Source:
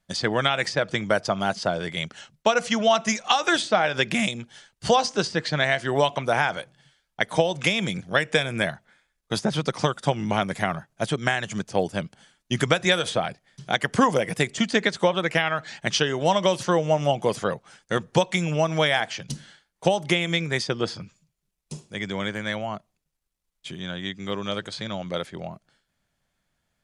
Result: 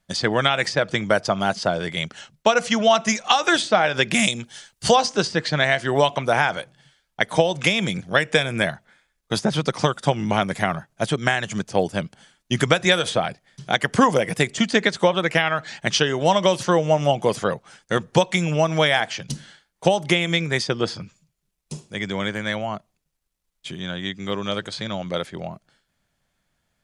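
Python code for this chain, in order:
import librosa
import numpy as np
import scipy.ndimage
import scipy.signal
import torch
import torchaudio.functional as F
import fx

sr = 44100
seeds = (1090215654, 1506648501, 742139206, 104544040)

y = fx.high_shelf(x, sr, hz=4200.0, db=9.5, at=(4.13, 4.92))
y = y * 10.0 ** (3.0 / 20.0)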